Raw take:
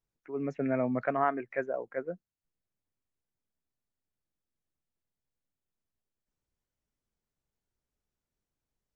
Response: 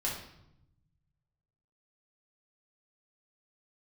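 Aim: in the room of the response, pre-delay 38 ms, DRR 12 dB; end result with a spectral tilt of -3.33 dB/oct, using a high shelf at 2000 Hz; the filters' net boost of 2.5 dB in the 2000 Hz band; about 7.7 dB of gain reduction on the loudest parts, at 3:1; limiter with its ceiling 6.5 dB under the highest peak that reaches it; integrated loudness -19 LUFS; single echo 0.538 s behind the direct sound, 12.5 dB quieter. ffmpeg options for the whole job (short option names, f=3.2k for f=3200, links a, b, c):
-filter_complex "[0:a]highshelf=f=2k:g=-3,equalizer=f=2k:t=o:g=5,acompressor=threshold=-33dB:ratio=3,alimiter=level_in=3dB:limit=-24dB:level=0:latency=1,volume=-3dB,aecho=1:1:538:0.237,asplit=2[a][b];[1:a]atrim=start_sample=2205,adelay=38[c];[b][c]afir=irnorm=-1:irlink=0,volume=-16.5dB[d];[a][d]amix=inputs=2:normalize=0,volume=20dB"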